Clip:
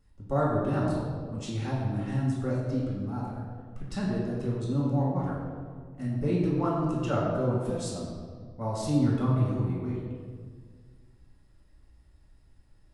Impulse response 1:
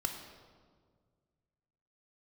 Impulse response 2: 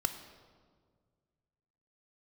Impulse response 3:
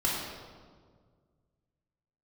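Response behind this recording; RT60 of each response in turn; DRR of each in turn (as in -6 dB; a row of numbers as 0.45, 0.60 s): 3; 1.8, 1.8, 1.8 s; 3.0, 7.0, -6.0 dB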